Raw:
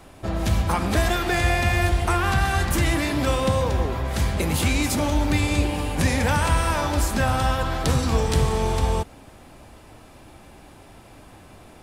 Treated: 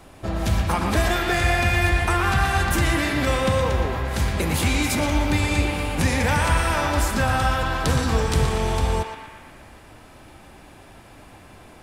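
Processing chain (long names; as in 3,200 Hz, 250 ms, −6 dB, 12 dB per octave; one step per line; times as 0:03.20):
feedback echo with a band-pass in the loop 118 ms, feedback 76%, band-pass 1,800 Hz, level −3.5 dB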